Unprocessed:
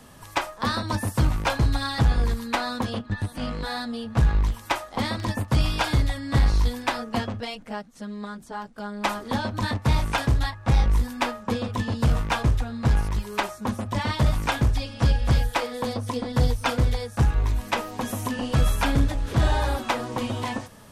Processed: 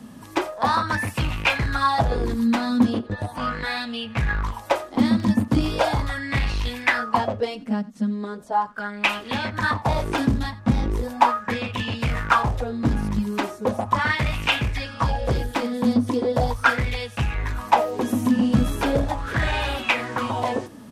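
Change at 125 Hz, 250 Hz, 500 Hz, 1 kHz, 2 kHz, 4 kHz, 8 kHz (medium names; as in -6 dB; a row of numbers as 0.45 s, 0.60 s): -3.0 dB, +6.0 dB, +4.5 dB, +5.5 dB, +6.0 dB, +2.0 dB, -2.5 dB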